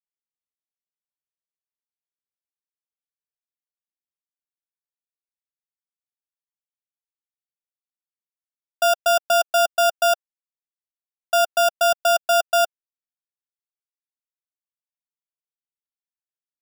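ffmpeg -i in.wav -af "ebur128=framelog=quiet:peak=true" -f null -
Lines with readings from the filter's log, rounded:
Integrated loudness:
  I:         -19.6 LUFS
  Threshold: -29.6 LUFS
Loudness range:
  LRA:         6.2 LU
  Threshold: -42.6 LUFS
  LRA low:   -27.0 LUFS
  LRA high:  -20.8 LUFS
True peak:
  Peak:      -10.6 dBFS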